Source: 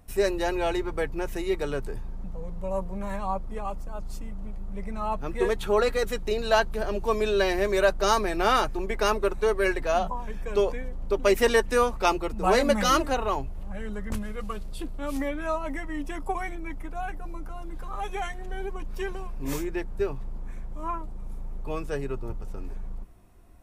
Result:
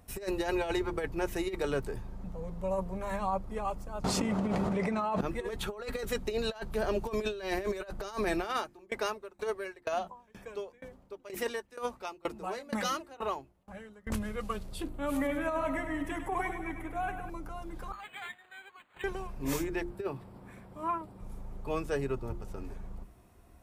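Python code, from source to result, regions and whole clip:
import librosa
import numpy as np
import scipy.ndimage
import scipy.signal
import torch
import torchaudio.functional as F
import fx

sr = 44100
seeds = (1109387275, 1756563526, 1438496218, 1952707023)

y = fx.chain(x, sr, fx.highpass(hz=200.0, slope=12),
    fx.air_absorb(metres=57.0),
    fx.env_flatten(amount_pct=100), at=(4.04, 5.21))
y = fx.chain(y, sr, fx.highpass(hz=200.0, slope=6),
    fx.tremolo_decay(direction='decaying', hz=2.1, depth_db=27), at=(8.44, 14.07))
y = fx.chain(y, sr, fx.peak_eq(hz=5200.0, db=-10.0, octaves=0.68),
    fx.echo_feedback(ms=100, feedback_pct=60, wet_db=-9), at=(14.89, 17.3))
y = fx.chain(y, sr, fx.cheby1_bandpass(low_hz=1700.0, high_hz=9800.0, order=2),
    fx.resample_linear(factor=8), at=(17.92, 19.04))
y = fx.chain(y, sr, fx.highpass(hz=110.0, slope=12),
    fx.peak_eq(hz=6400.0, db=-13.0, octaves=0.22), at=(19.9, 21.21))
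y = scipy.signal.sosfilt(scipy.signal.butter(2, 43.0, 'highpass', fs=sr, output='sos'), y)
y = fx.hum_notches(y, sr, base_hz=50, count=7)
y = fx.over_compress(y, sr, threshold_db=-28.0, ratio=-0.5)
y = y * 10.0 ** (-2.5 / 20.0)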